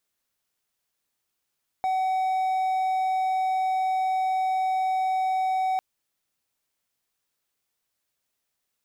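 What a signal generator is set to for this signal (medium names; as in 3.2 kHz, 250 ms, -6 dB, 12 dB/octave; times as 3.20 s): tone triangle 754 Hz -20 dBFS 3.95 s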